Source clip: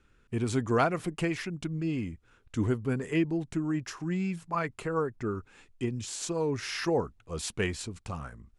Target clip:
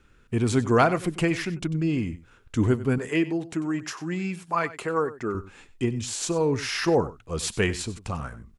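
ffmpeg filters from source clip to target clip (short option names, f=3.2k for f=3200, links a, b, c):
-filter_complex "[0:a]asettb=1/sr,asplit=3[a][b][c];[a]atrim=end=2.984[d];[b]atrim=start=2.98:end=5.35,asetpts=PTS-STARTPTS,afade=t=in:d=0.004:c=qsin,afade=t=out:st=2.366:d=0.004:c=qsin,highpass=f=310:p=1[e];[c]atrim=start=5.346[f];[d][e]acrossfade=d=0.004:c1=hsin:c2=qsin[g];[g][f]acrossfade=d=0.004:c1=qsin:c2=hsin,aecho=1:1:95:0.158,volume=6dB"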